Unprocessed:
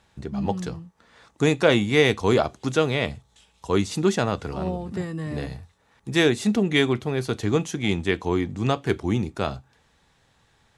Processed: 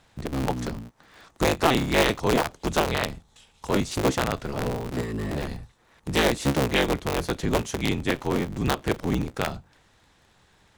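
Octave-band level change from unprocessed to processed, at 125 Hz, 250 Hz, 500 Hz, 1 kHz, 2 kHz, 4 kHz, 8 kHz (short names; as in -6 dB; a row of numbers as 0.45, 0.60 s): -2.5, -3.0, -3.0, +2.5, -1.5, -0.5, +2.5 dB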